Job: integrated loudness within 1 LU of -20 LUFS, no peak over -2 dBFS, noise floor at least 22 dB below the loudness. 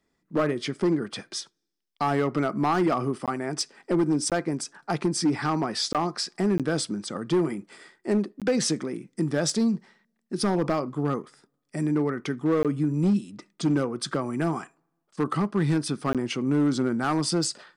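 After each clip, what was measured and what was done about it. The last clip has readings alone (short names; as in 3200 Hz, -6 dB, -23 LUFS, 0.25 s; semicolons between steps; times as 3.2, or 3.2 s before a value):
clipped 1.3%; flat tops at -17.0 dBFS; dropouts 7; longest dropout 17 ms; loudness -26.5 LUFS; peak -17.0 dBFS; loudness target -20.0 LUFS
-> clip repair -17 dBFS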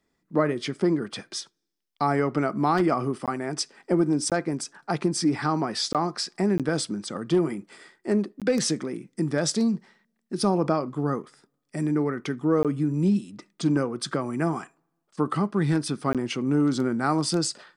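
clipped 0.0%; dropouts 7; longest dropout 17 ms
-> interpolate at 3.26/4.3/5.93/6.58/8.4/12.63/16.13, 17 ms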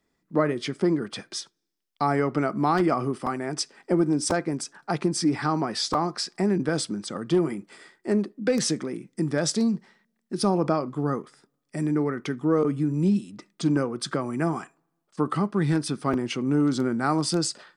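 dropouts 0; loudness -26.0 LUFS; peak -8.5 dBFS; loudness target -20.0 LUFS
-> gain +6 dB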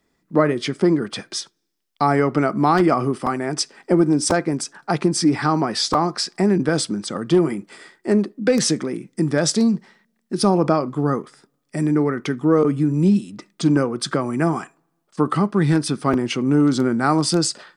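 loudness -20.0 LUFS; peak -2.5 dBFS; noise floor -71 dBFS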